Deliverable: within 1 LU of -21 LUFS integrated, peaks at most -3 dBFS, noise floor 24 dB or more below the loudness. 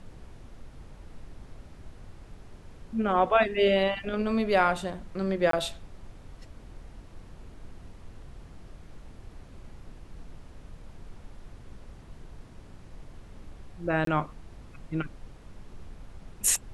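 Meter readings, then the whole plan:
dropouts 2; longest dropout 23 ms; noise floor -50 dBFS; noise floor target -51 dBFS; loudness -27.0 LUFS; peak level -9.5 dBFS; loudness target -21.0 LUFS
-> interpolate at 5.51/14.05 s, 23 ms; noise print and reduce 6 dB; trim +6 dB

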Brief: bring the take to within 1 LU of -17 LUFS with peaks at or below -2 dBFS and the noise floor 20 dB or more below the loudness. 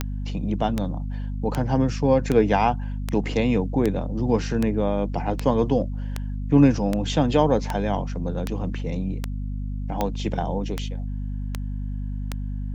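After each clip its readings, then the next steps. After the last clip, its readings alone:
clicks found 17; hum 50 Hz; highest harmonic 250 Hz; hum level -26 dBFS; loudness -24.5 LUFS; peak level -5.0 dBFS; loudness target -17.0 LUFS
-> de-click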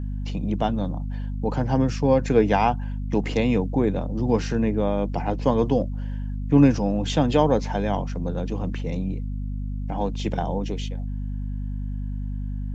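clicks found 0; hum 50 Hz; highest harmonic 250 Hz; hum level -26 dBFS
-> de-hum 50 Hz, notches 5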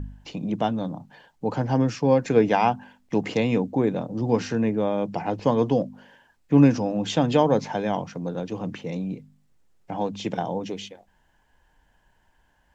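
hum not found; loudness -24.5 LUFS; peak level -5.5 dBFS; loudness target -17.0 LUFS
-> trim +7.5 dB; peak limiter -2 dBFS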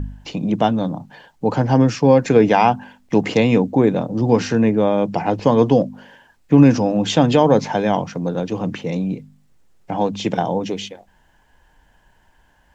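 loudness -17.5 LUFS; peak level -2.0 dBFS; noise floor -57 dBFS

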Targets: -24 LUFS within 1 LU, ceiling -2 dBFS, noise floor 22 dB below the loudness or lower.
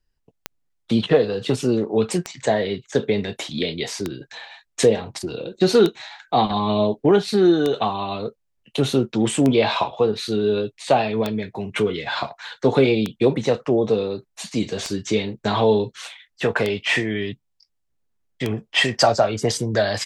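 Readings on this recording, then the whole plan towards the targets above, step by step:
clicks found 11; loudness -21.5 LUFS; peak level -3.0 dBFS; loudness target -24.0 LUFS
-> de-click; trim -2.5 dB

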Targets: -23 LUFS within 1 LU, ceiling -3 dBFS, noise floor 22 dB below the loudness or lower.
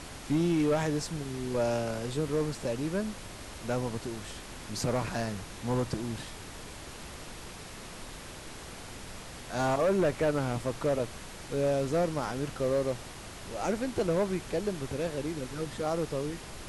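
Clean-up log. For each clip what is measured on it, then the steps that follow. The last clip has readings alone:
clipped samples 1.1%; clipping level -21.5 dBFS; noise floor -45 dBFS; noise floor target -54 dBFS; loudness -31.5 LUFS; peak level -21.5 dBFS; loudness target -23.0 LUFS
-> clip repair -21.5 dBFS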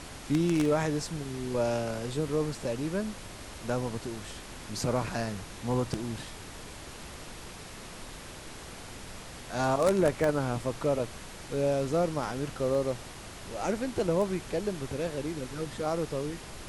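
clipped samples 0.0%; noise floor -45 dBFS; noise floor target -53 dBFS
-> noise print and reduce 8 dB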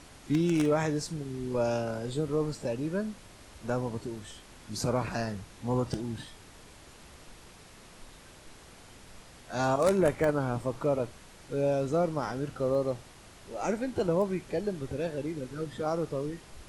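noise floor -53 dBFS; loudness -31.0 LUFS; peak level -12.5 dBFS; loudness target -23.0 LUFS
-> trim +8 dB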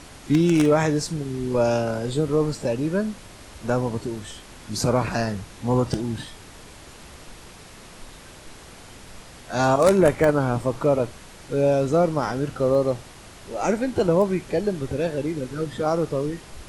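loudness -23.0 LUFS; peak level -4.5 dBFS; noise floor -45 dBFS

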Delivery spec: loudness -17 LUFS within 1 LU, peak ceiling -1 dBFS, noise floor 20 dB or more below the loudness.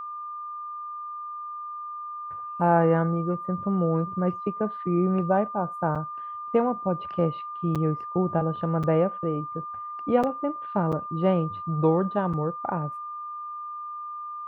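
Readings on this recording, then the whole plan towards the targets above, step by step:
dropouts 6; longest dropout 6.4 ms; steady tone 1.2 kHz; tone level -33 dBFS; loudness -27.0 LUFS; peak level -8.5 dBFS; loudness target -17.0 LUFS
-> interpolate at 5.95/7.75/8.83/10.23/10.92/12.33 s, 6.4 ms; band-stop 1.2 kHz, Q 30; trim +10 dB; peak limiter -1 dBFS

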